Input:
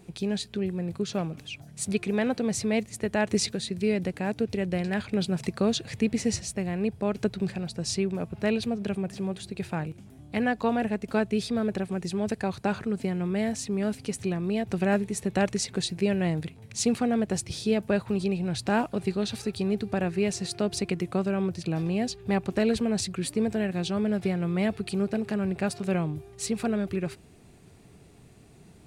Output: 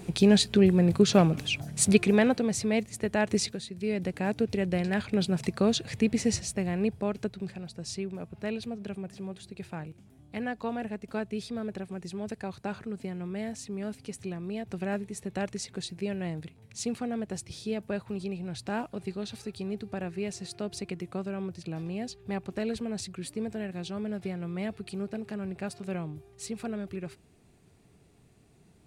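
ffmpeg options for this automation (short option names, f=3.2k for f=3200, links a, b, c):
-af "volume=18dB,afade=t=out:st=1.67:d=0.81:silence=0.316228,afade=t=out:st=3.31:d=0.4:silence=0.398107,afade=t=in:st=3.71:d=0.52:silence=0.354813,afade=t=out:st=6.85:d=0.48:silence=0.421697"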